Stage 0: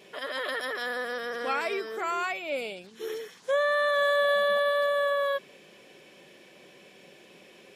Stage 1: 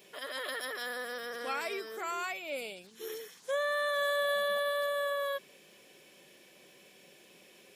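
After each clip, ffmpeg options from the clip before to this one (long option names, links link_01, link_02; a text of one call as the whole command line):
ffmpeg -i in.wav -af "aemphasis=mode=production:type=50kf,volume=-7dB" out.wav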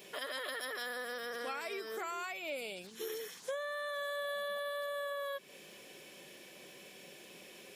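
ffmpeg -i in.wav -af "acompressor=threshold=-42dB:ratio=5,volume=4.5dB" out.wav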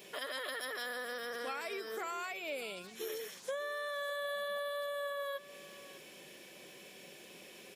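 ffmpeg -i in.wav -af "aecho=1:1:603:0.141" out.wav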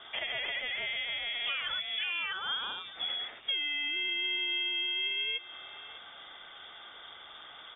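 ffmpeg -i in.wav -af "lowpass=frequency=3200:width_type=q:width=0.5098,lowpass=frequency=3200:width_type=q:width=0.6013,lowpass=frequency=3200:width_type=q:width=0.9,lowpass=frequency=3200:width_type=q:width=2.563,afreqshift=-3800,volume=6dB" out.wav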